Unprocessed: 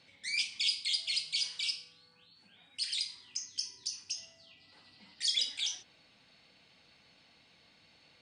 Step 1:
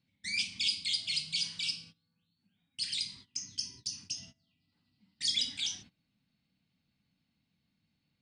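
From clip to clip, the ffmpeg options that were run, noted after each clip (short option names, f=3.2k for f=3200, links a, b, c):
-af "agate=range=-21dB:threshold=-52dB:ratio=16:detection=peak,lowshelf=f=320:t=q:w=1.5:g=13.5"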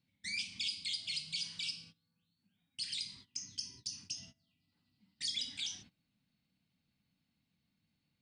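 -af "acompressor=threshold=-35dB:ratio=2,volume=-2.5dB"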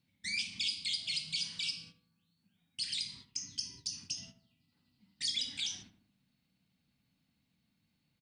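-filter_complex "[0:a]asplit=2[a][b];[b]adelay=77,lowpass=f=1.5k:p=1,volume=-10dB,asplit=2[c][d];[d]adelay=77,lowpass=f=1.5k:p=1,volume=0.54,asplit=2[e][f];[f]adelay=77,lowpass=f=1.5k:p=1,volume=0.54,asplit=2[g][h];[h]adelay=77,lowpass=f=1.5k:p=1,volume=0.54,asplit=2[i][j];[j]adelay=77,lowpass=f=1.5k:p=1,volume=0.54,asplit=2[k][l];[l]adelay=77,lowpass=f=1.5k:p=1,volume=0.54[m];[a][c][e][g][i][k][m]amix=inputs=7:normalize=0,volume=3dB"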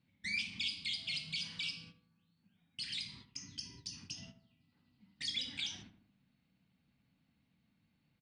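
-af "bass=f=250:g=0,treble=f=4k:g=-13,volume=2.5dB"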